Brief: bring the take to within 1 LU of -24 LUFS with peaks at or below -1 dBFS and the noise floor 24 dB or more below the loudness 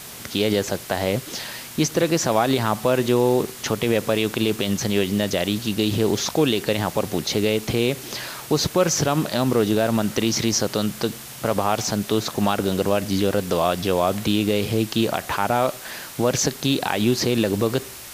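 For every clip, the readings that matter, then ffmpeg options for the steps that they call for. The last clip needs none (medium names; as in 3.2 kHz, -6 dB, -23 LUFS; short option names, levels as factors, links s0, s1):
noise floor -38 dBFS; noise floor target -46 dBFS; loudness -22.0 LUFS; peak level -4.5 dBFS; loudness target -24.0 LUFS
-> -af "afftdn=nr=8:nf=-38"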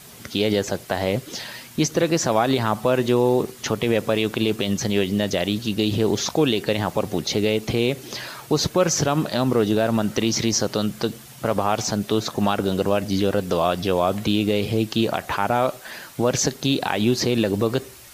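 noise floor -43 dBFS; noise floor target -46 dBFS
-> -af "afftdn=nr=6:nf=-43"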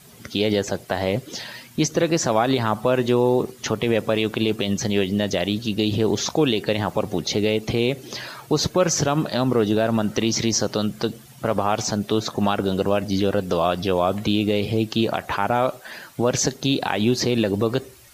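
noise floor -46 dBFS; loudness -22.0 LUFS; peak level -4.5 dBFS; loudness target -24.0 LUFS
-> -af "volume=0.794"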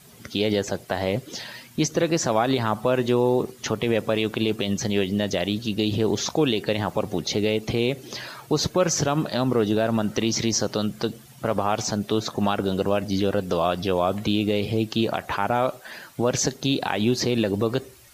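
loudness -24.0 LUFS; peak level -6.5 dBFS; noise floor -48 dBFS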